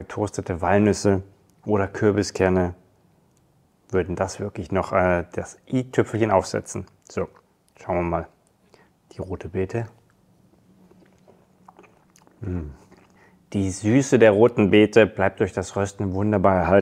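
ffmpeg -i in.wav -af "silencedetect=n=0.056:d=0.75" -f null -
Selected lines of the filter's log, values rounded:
silence_start: 2.69
silence_end: 3.93 | silence_duration: 1.24
silence_start: 8.21
silence_end: 9.19 | silence_duration: 0.98
silence_start: 9.83
silence_end: 12.44 | silence_duration: 2.60
silence_start: 12.63
silence_end: 13.55 | silence_duration: 0.92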